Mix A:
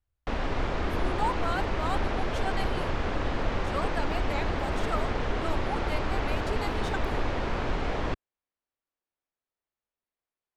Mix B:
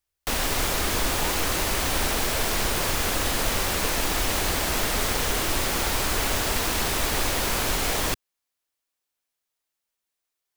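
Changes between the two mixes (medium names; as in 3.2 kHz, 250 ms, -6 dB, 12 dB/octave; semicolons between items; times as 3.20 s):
speech -11.0 dB; background: remove tape spacing loss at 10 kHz 39 dB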